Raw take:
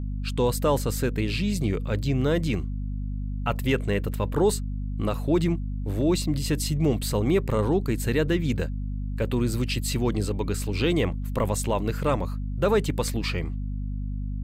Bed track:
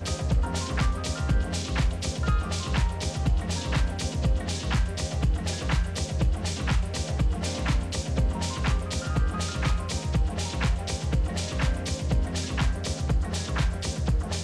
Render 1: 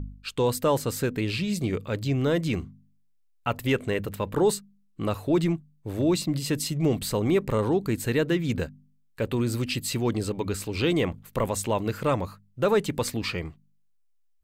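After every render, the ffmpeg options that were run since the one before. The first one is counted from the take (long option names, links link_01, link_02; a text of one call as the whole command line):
ffmpeg -i in.wav -af "bandreject=frequency=50:width_type=h:width=4,bandreject=frequency=100:width_type=h:width=4,bandreject=frequency=150:width_type=h:width=4,bandreject=frequency=200:width_type=h:width=4,bandreject=frequency=250:width_type=h:width=4" out.wav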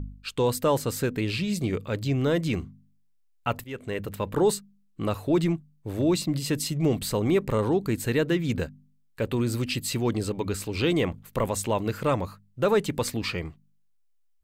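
ffmpeg -i in.wav -filter_complex "[0:a]asplit=2[link_01][link_02];[link_01]atrim=end=3.64,asetpts=PTS-STARTPTS,afade=type=out:start_time=3.636:duration=0.004:curve=hsin:silence=0.0668344[link_03];[link_02]atrim=start=3.64,asetpts=PTS-STARTPTS,afade=type=in:duration=0.72:curve=qsin:silence=0.0668344[link_04];[link_03][link_04]concat=n=2:v=0:a=1" out.wav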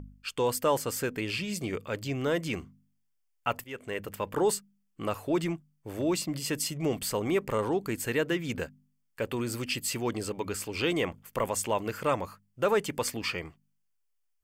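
ffmpeg -i in.wav -af "lowshelf=frequency=310:gain=-11,bandreject=frequency=3900:width=5.2" out.wav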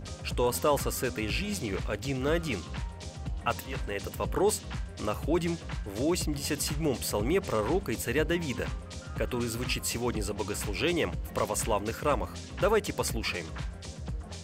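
ffmpeg -i in.wav -i bed.wav -filter_complex "[1:a]volume=-11.5dB[link_01];[0:a][link_01]amix=inputs=2:normalize=0" out.wav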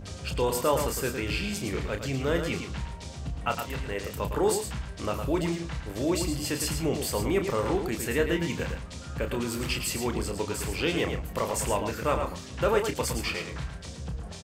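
ffmpeg -i in.wav -filter_complex "[0:a]asplit=2[link_01][link_02];[link_02]adelay=30,volume=-7.5dB[link_03];[link_01][link_03]amix=inputs=2:normalize=0,asplit=2[link_04][link_05];[link_05]aecho=0:1:110:0.447[link_06];[link_04][link_06]amix=inputs=2:normalize=0" out.wav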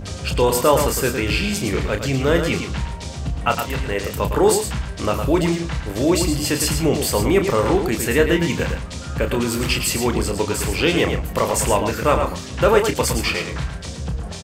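ffmpeg -i in.wav -af "volume=9.5dB" out.wav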